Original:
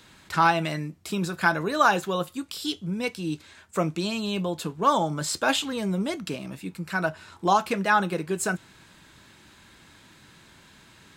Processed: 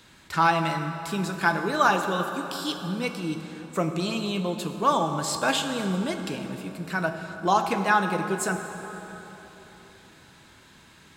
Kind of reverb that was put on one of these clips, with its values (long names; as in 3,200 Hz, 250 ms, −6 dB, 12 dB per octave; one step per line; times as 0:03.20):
dense smooth reverb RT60 3.9 s, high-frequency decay 0.6×, DRR 6 dB
level −1 dB